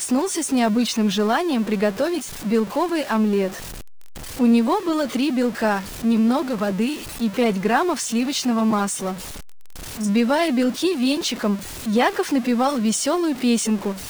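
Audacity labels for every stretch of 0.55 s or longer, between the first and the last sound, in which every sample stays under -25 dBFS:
3.480000	4.390000	silence
9.130000	10.000000	silence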